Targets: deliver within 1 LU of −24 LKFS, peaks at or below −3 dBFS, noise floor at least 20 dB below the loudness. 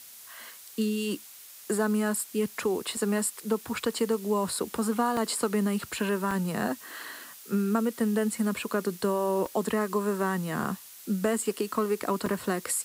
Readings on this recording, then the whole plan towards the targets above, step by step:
number of dropouts 7; longest dropout 2.7 ms; background noise floor −48 dBFS; target noise floor −49 dBFS; integrated loudness −29.0 LKFS; sample peak −12.0 dBFS; target loudness −24.0 LKFS
→ repair the gap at 0:02.97/0:05.17/0:06.31/0:09.46/0:10.64/0:11.38/0:12.26, 2.7 ms
noise reduction from a noise print 6 dB
level +5 dB

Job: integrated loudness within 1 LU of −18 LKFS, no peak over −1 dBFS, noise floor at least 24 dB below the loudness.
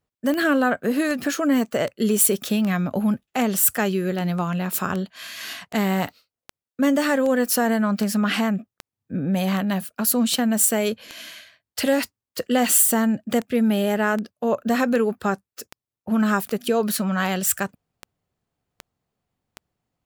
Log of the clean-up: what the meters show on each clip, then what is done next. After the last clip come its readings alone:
number of clicks 26; integrated loudness −22.0 LKFS; sample peak −3.0 dBFS; target loudness −18.0 LKFS
→ click removal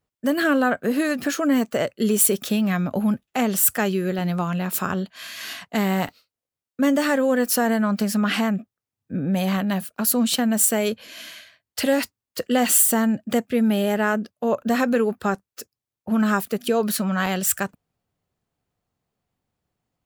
number of clicks 0; integrated loudness −22.0 LKFS; sample peak −3.0 dBFS; target loudness −18.0 LKFS
→ level +4 dB
brickwall limiter −1 dBFS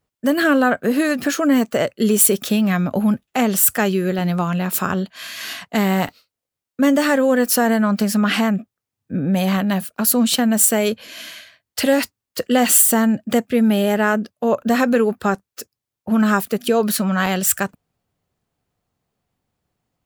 integrated loudness −18.0 LKFS; sample peak −1.0 dBFS; background noise floor −85 dBFS

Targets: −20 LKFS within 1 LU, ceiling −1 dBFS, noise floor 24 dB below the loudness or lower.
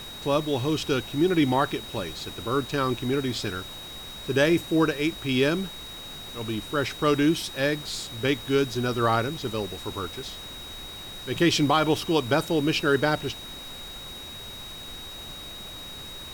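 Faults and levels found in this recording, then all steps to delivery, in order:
interfering tone 3,800 Hz; level of the tone −39 dBFS; background noise floor −40 dBFS; target noise floor −50 dBFS; integrated loudness −25.5 LKFS; sample peak −10.0 dBFS; target loudness −20.0 LKFS
→ notch filter 3,800 Hz, Q 30
noise reduction from a noise print 10 dB
level +5.5 dB

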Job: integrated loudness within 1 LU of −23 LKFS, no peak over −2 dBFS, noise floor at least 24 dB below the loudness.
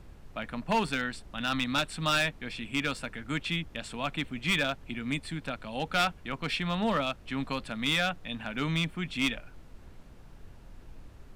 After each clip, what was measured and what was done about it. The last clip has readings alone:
share of clipped samples 0.5%; peaks flattened at −20.5 dBFS; background noise floor −51 dBFS; target noise floor −55 dBFS; integrated loudness −31.0 LKFS; sample peak −20.5 dBFS; target loudness −23.0 LKFS
→ clipped peaks rebuilt −20.5 dBFS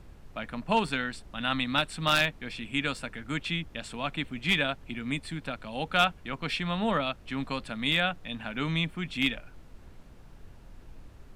share of clipped samples 0.0%; background noise floor −51 dBFS; target noise floor −54 dBFS
→ noise reduction from a noise print 6 dB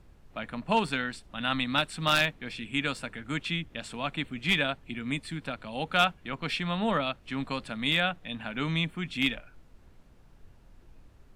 background noise floor −57 dBFS; integrated loudness −30.0 LKFS; sample peak −11.5 dBFS; target loudness −23.0 LKFS
→ level +7 dB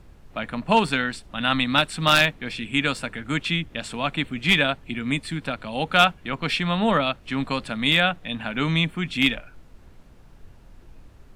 integrated loudness −23.0 LKFS; sample peak −4.5 dBFS; background noise floor −50 dBFS

